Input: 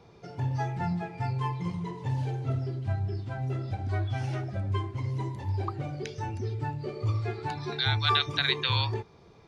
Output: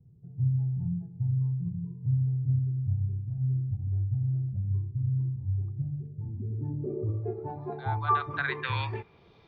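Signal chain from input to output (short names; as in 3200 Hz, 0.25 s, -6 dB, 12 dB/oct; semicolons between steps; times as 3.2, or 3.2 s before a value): low-pass sweep 140 Hz -> 3500 Hz, 6.01–9.35; 6.5–7.04 fast leveller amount 70%; gain -3.5 dB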